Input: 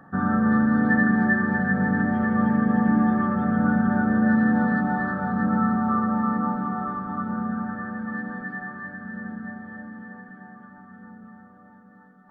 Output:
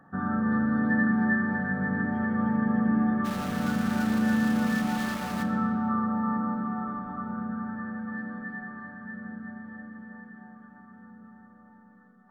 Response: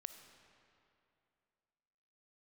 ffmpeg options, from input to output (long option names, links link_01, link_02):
-filter_complex "[0:a]asplit=3[link_01][link_02][link_03];[link_01]afade=type=out:start_time=3.24:duration=0.02[link_04];[link_02]aeval=exprs='val(0)*gte(abs(val(0)),0.0473)':channel_layout=same,afade=type=in:start_time=3.24:duration=0.02,afade=type=out:start_time=5.42:duration=0.02[link_05];[link_03]afade=type=in:start_time=5.42:duration=0.02[link_06];[link_04][link_05][link_06]amix=inputs=3:normalize=0[link_07];[1:a]atrim=start_sample=2205,asetrate=61740,aresample=44100[link_08];[link_07][link_08]afir=irnorm=-1:irlink=0,volume=2dB"